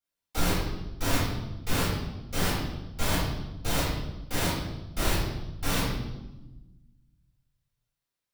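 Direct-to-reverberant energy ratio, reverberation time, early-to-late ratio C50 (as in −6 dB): −11.0 dB, 1.0 s, −0.5 dB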